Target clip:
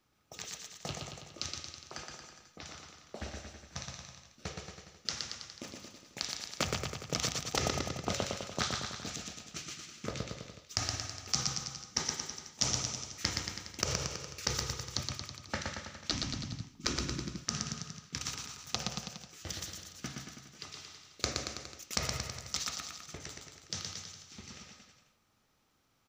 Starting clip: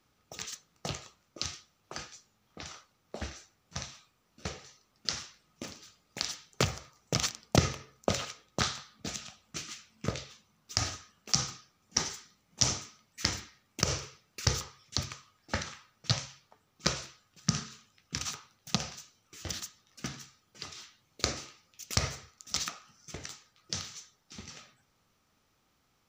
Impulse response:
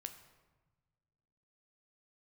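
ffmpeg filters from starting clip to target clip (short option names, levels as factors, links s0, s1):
-filter_complex "[0:a]asettb=1/sr,asplit=3[s0][s1][s2];[s0]atrim=end=16.114[s3];[s1]atrim=start=16.11:end=16.96,asetpts=PTS-STARTPTS,afade=t=in:d=0.004:c=qsin,afade=t=out:st=0.846:d=0.004:c=qsin,lowshelf=f=390:t=q:w=3:g=11.5[s4];[s2]atrim=start=16.956[s5];[s3][s4]acrossfade=d=0.004:c1=hsin:c2=qsin[s6];[s6][s5]acrossfade=d=0.004:c1=qsin:c2=hsin,aecho=1:1:120|228|325.2|412.7|491.4:0.631|0.398|0.251|0.158|0.1,afftfilt=real='re*lt(hypot(re,im),0.316)':imag='im*lt(hypot(re,im),0.316)':win_size=1024:overlap=0.75,volume=0.668"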